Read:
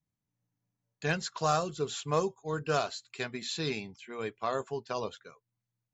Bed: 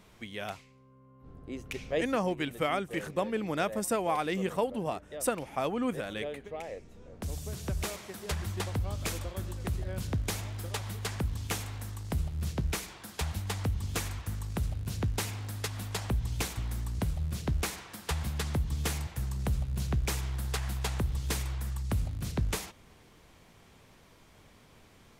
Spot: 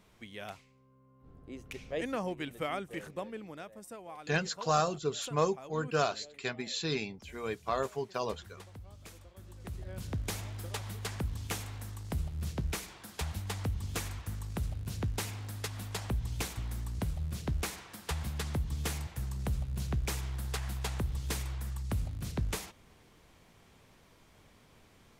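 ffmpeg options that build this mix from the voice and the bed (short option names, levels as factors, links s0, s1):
-filter_complex "[0:a]adelay=3250,volume=1[s0];[1:a]volume=2.66,afade=t=out:st=2.9:d=0.77:silence=0.266073,afade=t=in:st=9.34:d=0.99:silence=0.199526[s1];[s0][s1]amix=inputs=2:normalize=0"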